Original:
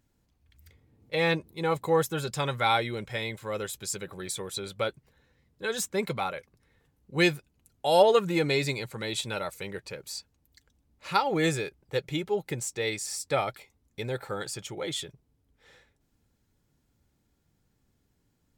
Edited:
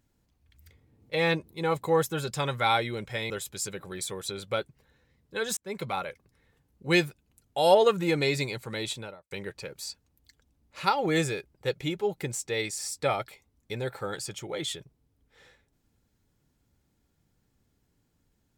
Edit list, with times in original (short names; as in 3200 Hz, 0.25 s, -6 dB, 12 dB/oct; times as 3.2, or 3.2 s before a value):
3.3–3.58 cut
5.85–6.35 fade in equal-power
9.09–9.59 studio fade out